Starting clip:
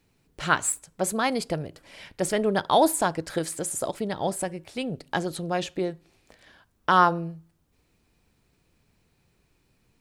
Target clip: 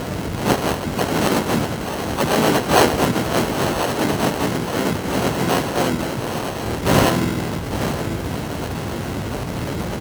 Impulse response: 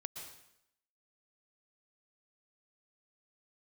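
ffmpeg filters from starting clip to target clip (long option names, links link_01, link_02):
-filter_complex "[0:a]aeval=exprs='val(0)+0.5*0.075*sgn(val(0))':channel_layout=same,tremolo=f=81:d=0.824,aecho=1:1:861:0.299,asplit=4[link_01][link_02][link_03][link_04];[link_02]asetrate=33038,aresample=44100,atempo=1.33484,volume=-2dB[link_05];[link_03]asetrate=55563,aresample=44100,atempo=0.793701,volume=-3dB[link_06];[link_04]asetrate=58866,aresample=44100,atempo=0.749154,volume=-7dB[link_07];[link_01][link_05][link_06][link_07]amix=inputs=4:normalize=0,lowshelf=frequency=210:gain=5.5,bandreject=frequency=4300:width=14,acrusher=samples=37:mix=1:aa=0.000001,asplit=3[link_08][link_09][link_10];[link_09]asetrate=66075,aresample=44100,atempo=0.66742,volume=-1dB[link_11];[link_10]asetrate=88200,aresample=44100,atempo=0.5,volume=-4dB[link_12];[link_08][link_11][link_12]amix=inputs=3:normalize=0,highpass=67,volume=-1dB"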